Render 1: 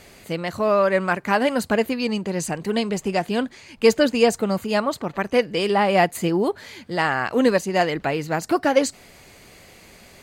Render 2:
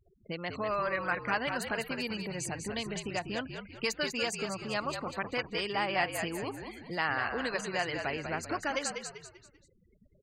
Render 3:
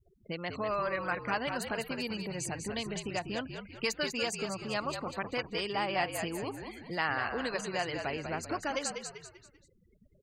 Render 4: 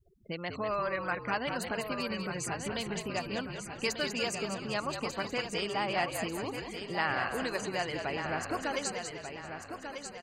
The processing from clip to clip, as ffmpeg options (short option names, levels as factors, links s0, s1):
-filter_complex "[0:a]afftfilt=real='re*gte(hypot(re,im),0.0178)':imag='im*gte(hypot(re,im),0.0178)':win_size=1024:overlap=0.75,acrossover=split=960[s0][s1];[s0]acompressor=threshold=0.0398:ratio=12[s2];[s2][s1]amix=inputs=2:normalize=0,asplit=5[s3][s4][s5][s6][s7];[s4]adelay=195,afreqshift=-59,volume=0.473[s8];[s5]adelay=390,afreqshift=-118,volume=0.18[s9];[s6]adelay=585,afreqshift=-177,volume=0.0684[s10];[s7]adelay=780,afreqshift=-236,volume=0.026[s11];[s3][s8][s9][s10][s11]amix=inputs=5:normalize=0,volume=0.422"
-af "adynamicequalizer=threshold=0.00447:dfrequency=1800:dqfactor=1.4:tfrequency=1800:tqfactor=1.4:attack=5:release=100:ratio=0.375:range=2:mode=cutabove:tftype=bell"
-af "aecho=1:1:1192|2384|3576|4768:0.398|0.151|0.0575|0.0218"